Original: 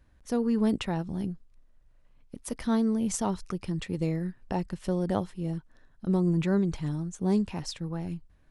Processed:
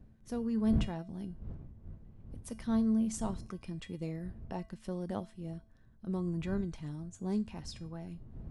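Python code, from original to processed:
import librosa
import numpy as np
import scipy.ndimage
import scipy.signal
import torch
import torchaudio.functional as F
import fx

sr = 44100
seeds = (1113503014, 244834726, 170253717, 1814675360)

y = fx.dmg_wind(x, sr, seeds[0], corner_hz=99.0, level_db=-35.0)
y = fx.comb_fb(y, sr, f0_hz=220.0, decay_s=0.34, harmonics='odd', damping=0.0, mix_pct=70)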